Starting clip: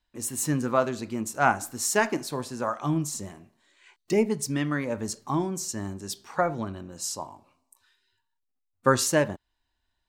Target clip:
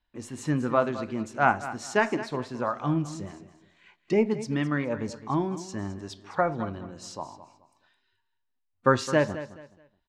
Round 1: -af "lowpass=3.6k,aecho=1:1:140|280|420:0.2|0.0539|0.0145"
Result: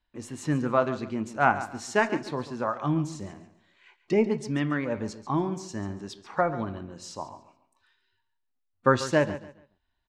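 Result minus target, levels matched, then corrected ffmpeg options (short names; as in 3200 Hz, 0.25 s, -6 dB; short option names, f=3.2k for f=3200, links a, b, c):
echo 73 ms early
-af "lowpass=3.6k,aecho=1:1:213|426|639:0.2|0.0539|0.0145"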